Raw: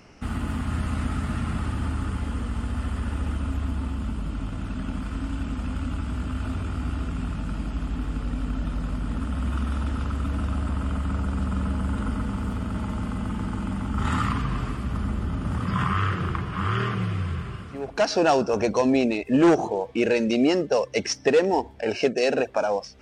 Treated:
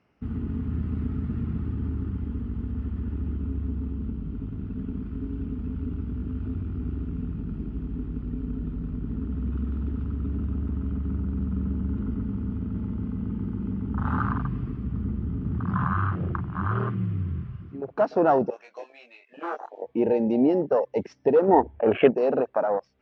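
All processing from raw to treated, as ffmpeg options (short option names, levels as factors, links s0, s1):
-filter_complex "[0:a]asettb=1/sr,asplit=3[s0][s1][s2];[s0]atrim=end=18.504[s3];[s1]atrim=start=18.5:end=19.82,asetpts=PTS-STARTPTS,afade=t=in:d=0.004:c=qsin,afade=t=out:st=1.316:d=0.004:c=qsin,highpass=1300,asplit=2[s4][s5];[s5]adelay=21,volume=0.75[s6];[s4][s6]amix=inputs=2:normalize=0,atrim=end_sample=58212[s7];[s2]atrim=start=19.816[s8];[s3][s7]acrossfade=d=0.004:c1=hsin:c2=qsin[s9];[s9][s8]acrossfade=d=0.004:c1=qsin:c2=hsin,asettb=1/sr,asplit=3[s10][s11][s12];[s10]atrim=end=21.484[s13];[s11]atrim=start=21.48:end=22.11,asetpts=PTS-STARTPTS,afade=t=in:d=0.004:c=qsin,afade=t=out:st=0.626:d=0.004:c=qsin,asuperstop=centerf=5500:order=4:qfactor=0.98,acontrast=41[s14];[s12]atrim=start=22.106[s15];[s13][s14]acrossfade=d=0.004:c1=hsin:c2=qsin[s16];[s16][s15]acrossfade=d=0.004:c1=qsin:c2=hsin,highpass=63,afwtdn=0.0501,lowpass=3000"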